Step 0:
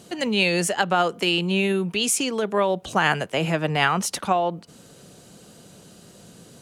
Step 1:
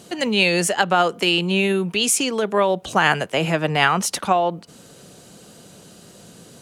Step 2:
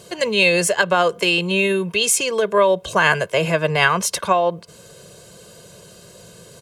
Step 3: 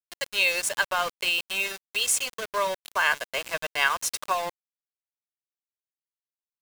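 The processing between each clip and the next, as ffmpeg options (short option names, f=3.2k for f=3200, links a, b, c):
-af "lowshelf=f=220:g=-3,volume=3.5dB"
-af "aecho=1:1:1.9:0.75"
-af "highpass=830,aeval=exprs='val(0)*gte(abs(val(0)),0.0668)':c=same,volume=-6dB"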